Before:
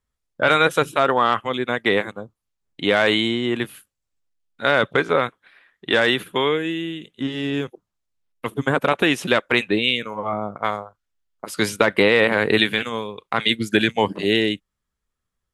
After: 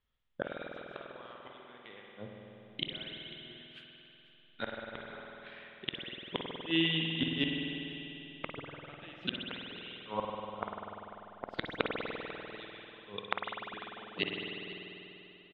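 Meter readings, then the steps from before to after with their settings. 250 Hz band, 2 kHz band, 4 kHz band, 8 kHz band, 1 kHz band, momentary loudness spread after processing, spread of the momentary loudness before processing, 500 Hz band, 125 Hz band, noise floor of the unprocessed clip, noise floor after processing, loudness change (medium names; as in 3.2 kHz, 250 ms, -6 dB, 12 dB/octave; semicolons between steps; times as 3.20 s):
-16.0 dB, -19.5 dB, -13.0 dB, under -40 dB, -19.5 dB, 17 LU, 12 LU, -21.5 dB, -14.0 dB, -81 dBFS, -60 dBFS, -18.0 dB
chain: inverted gate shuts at -16 dBFS, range -33 dB; four-pole ladder low-pass 3.7 kHz, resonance 55%; on a send: delay 496 ms -17.5 dB; on the sum: spring tank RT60 3.4 s, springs 49 ms, chirp 20 ms, DRR -0.5 dB; trim +5.5 dB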